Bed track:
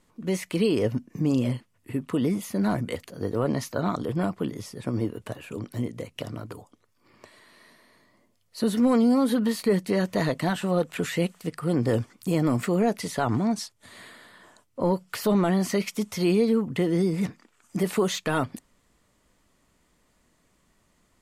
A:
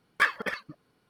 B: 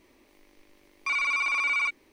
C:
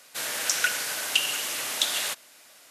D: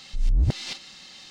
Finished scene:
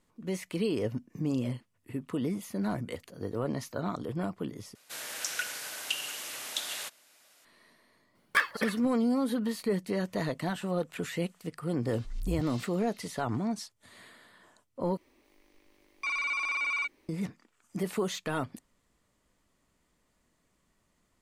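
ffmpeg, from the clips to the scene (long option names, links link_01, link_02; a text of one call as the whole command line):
ffmpeg -i bed.wav -i cue0.wav -i cue1.wav -i cue2.wav -i cue3.wav -filter_complex "[0:a]volume=-7dB[link_01];[1:a]highshelf=frequency=7900:gain=8.5[link_02];[link_01]asplit=3[link_03][link_04][link_05];[link_03]atrim=end=4.754[link_06];[3:a]atrim=end=2.7,asetpts=PTS-STARTPTS,volume=-9dB[link_07];[link_04]atrim=start=7.446:end=14.974[link_08];[2:a]atrim=end=2.12,asetpts=PTS-STARTPTS,volume=-5dB[link_09];[link_05]atrim=start=17.086[link_10];[link_02]atrim=end=1.09,asetpts=PTS-STARTPTS,volume=-2.5dB,afade=type=in:duration=0.004:curve=hsin,afade=type=out:start_time=1.086:duration=0.004:curve=hsin,adelay=8150[link_11];[4:a]atrim=end=1.3,asetpts=PTS-STARTPTS,volume=-14.5dB,afade=type=in:duration=0.004:curve=hsin,afade=type=out:start_time=1.296:duration=0.004:curve=hsin,adelay=11910[link_12];[link_06][link_07]acrossfade=duration=0.004:curve1=hsin:curve2=hsin[link_13];[link_13][link_08]acrossfade=duration=0.004:curve1=hsin:curve2=hsin[link_14];[link_14][link_09]acrossfade=duration=0.004:curve1=hsin:curve2=hsin[link_15];[link_15][link_10]acrossfade=duration=0.004:curve1=hsin:curve2=hsin[link_16];[link_16][link_11][link_12]amix=inputs=3:normalize=0" out.wav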